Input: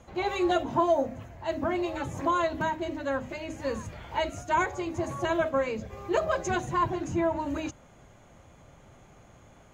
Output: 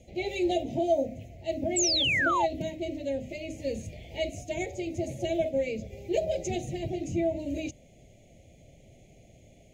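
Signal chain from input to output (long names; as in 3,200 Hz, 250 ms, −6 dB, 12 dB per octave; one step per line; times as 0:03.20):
elliptic band-stop filter 670–2,200 Hz, stop band 60 dB
sound drawn into the spectrogram fall, 0:01.76–0:02.46, 760–8,000 Hz −26 dBFS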